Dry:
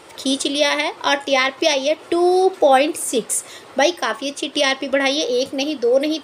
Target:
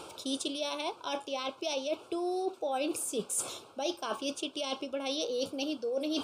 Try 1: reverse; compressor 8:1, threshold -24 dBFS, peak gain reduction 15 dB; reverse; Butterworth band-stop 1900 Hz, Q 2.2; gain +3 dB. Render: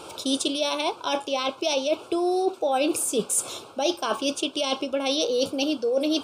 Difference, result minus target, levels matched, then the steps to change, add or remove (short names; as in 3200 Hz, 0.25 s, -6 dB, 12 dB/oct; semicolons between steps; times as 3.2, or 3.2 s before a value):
compressor: peak gain reduction -9 dB
change: compressor 8:1, threshold -34.5 dBFS, peak gain reduction 24 dB